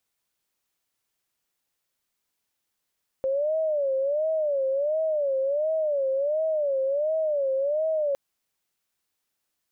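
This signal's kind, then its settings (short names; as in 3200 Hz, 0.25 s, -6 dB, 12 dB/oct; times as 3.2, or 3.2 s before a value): siren wail 531–639 Hz 1.4/s sine -22 dBFS 4.91 s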